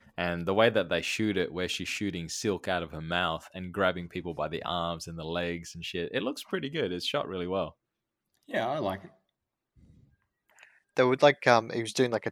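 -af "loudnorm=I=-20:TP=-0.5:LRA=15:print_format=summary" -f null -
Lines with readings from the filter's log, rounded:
Input Integrated:    -28.8 LUFS
Input True Peak:      -5.4 dBTP
Input LRA:             7.1 LU
Input Threshold:     -39.8 LUFS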